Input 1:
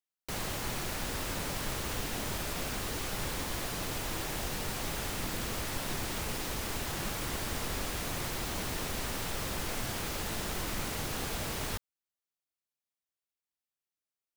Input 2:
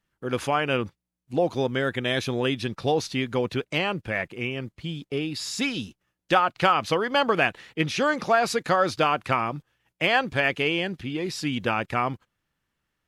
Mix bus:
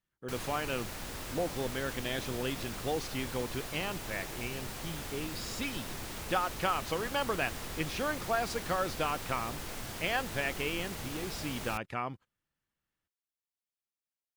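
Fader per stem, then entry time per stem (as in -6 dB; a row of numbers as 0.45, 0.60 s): -5.5, -10.5 dB; 0.00, 0.00 s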